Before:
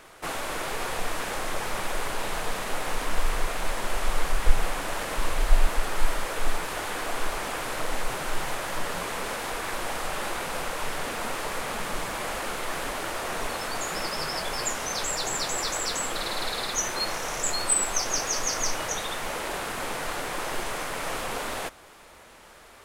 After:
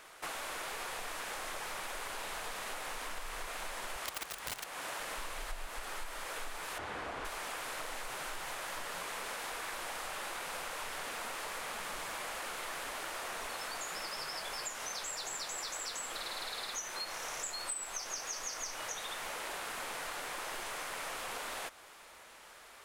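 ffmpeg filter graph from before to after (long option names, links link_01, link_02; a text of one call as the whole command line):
ffmpeg -i in.wav -filter_complex "[0:a]asettb=1/sr,asplit=3[link_01][link_02][link_03];[link_01]atrim=end=3.964[link_04];[link_02]atrim=start=3.96:end=5,asetpts=PTS-STARTPTS,afade=type=in:duration=0.004:curve=qsin,afade=type=out:start_time=1.036:duration=0.004:curve=qsin,lowshelf=frequency=70:gain=-5,aeval=exprs='(mod(7.94*val(0)+1,2)-1)/7.94':channel_layout=same,highpass=50[link_05];[link_03]atrim=start=4.996[link_06];[link_04][link_05]acrossfade=duration=0.004:curve1=hsin:curve2=qsin[link_07];[link_07][link_06]acrossfade=duration=0.004:curve1=qsin:curve2=hsin,asettb=1/sr,asplit=3[link_08][link_09][link_10];[link_08]atrim=end=6.784[link_11];[link_09]atrim=start=6.78:end=7.25,asetpts=PTS-STARTPTS,afade=type=in:duration=0.004:curve=qsin,afade=type=out:start_time=0.466:duration=0.004:curve=qsin,highpass=68,aemphasis=mode=reproduction:type=riaa[link_12];[link_10]atrim=start=7.246[link_13];[link_11][link_12]acrossfade=duration=0.004:curve1=hsin:curve2=qsin[link_14];[link_14][link_13]acrossfade=duration=0.004:curve1=qsin:curve2=hsin,lowshelf=frequency=450:gain=-12,acompressor=threshold=-35dB:ratio=6,volume=-2.5dB" out.wav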